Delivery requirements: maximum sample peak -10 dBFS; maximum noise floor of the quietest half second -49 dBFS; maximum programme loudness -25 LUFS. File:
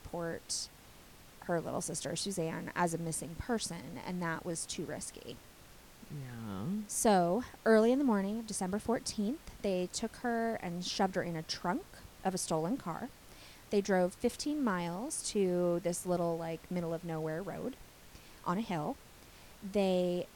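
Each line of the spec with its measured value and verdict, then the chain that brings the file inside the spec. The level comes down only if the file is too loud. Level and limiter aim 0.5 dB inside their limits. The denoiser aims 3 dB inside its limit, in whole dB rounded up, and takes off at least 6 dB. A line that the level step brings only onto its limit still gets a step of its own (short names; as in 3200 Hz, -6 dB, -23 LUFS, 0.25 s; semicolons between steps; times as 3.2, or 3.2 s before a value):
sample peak -14.5 dBFS: OK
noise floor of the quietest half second -56 dBFS: OK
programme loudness -35.0 LUFS: OK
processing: none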